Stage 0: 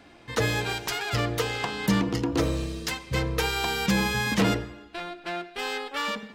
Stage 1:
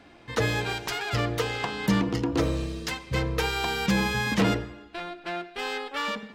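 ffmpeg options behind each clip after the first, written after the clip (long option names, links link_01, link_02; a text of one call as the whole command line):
ffmpeg -i in.wav -af "highshelf=frequency=6200:gain=-6" out.wav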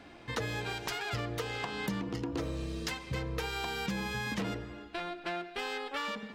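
ffmpeg -i in.wav -af "acompressor=threshold=-33dB:ratio=5" out.wav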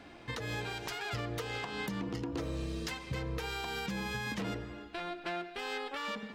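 ffmpeg -i in.wav -af "alimiter=level_in=2.5dB:limit=-24dB:level=0:latency=1:release=158,volume=-2.5dB" out.wav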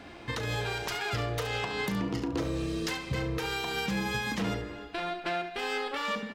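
ffmpeg -i in.wav -af "aecho=1:1:36|70:0.282|0.299,volume=5dB" out.wav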